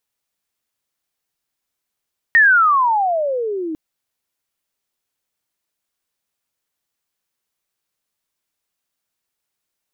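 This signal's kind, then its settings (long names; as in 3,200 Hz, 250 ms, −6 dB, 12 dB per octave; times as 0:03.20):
pitch glide with a swell sine, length 1.40 s, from 1,880 Hz, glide −31.5 semitones, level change −15 dB, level −7 dB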